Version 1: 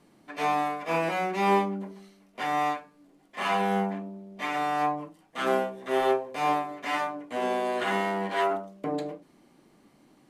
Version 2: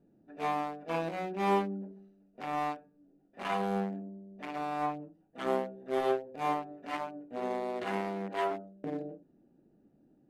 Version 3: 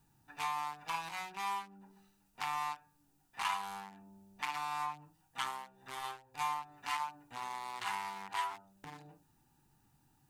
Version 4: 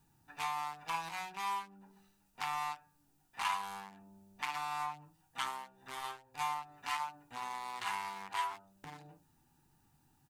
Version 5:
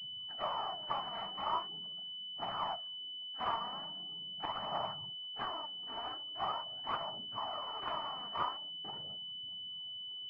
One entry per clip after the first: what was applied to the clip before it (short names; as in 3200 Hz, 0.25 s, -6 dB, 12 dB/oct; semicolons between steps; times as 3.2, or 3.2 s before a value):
Wiener smoothing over 41 samples; gain -4 dB
compressor 6:1, threshold -41 dBFS, peak gain reduction 17 dB; EQ curve 130 Hz 0 dB, 190 Hz -16 dB, 620 Hz -21 dB, 890 Hz +9 dB, 1500 Hz +2 dB, 8000 Hz +14 dB; gain +5 dB
doubler 12 ms -13 dB
noise vocoder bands 12; phaser 0.42 Hz, delay 4.5 ms, feedback 51%; pulse-width modulation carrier 3000 Hz; gain +1 dB